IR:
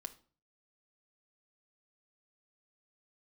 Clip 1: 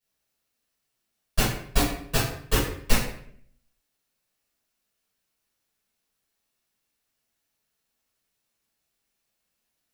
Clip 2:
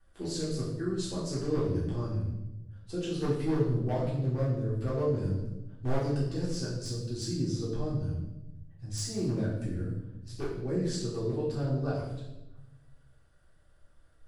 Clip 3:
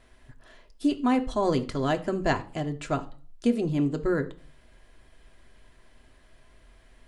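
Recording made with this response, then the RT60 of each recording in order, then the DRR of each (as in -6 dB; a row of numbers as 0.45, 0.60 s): 3; 0.65, 1.0, 0.45 s; -13.0, -9.0, 5.0 dB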